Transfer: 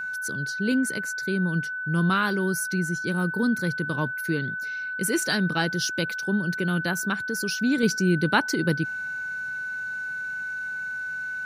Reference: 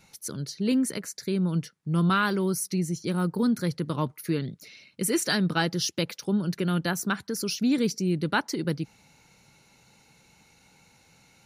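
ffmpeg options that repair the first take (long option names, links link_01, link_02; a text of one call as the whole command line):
ffmpeg -i in.wav -af "bandreject=frequency=1500:width=30,asetnsamples=nb_out_samples=441:pad=0,asendcmd='7.83 volume volume -4dB',volume=0dB" out.wav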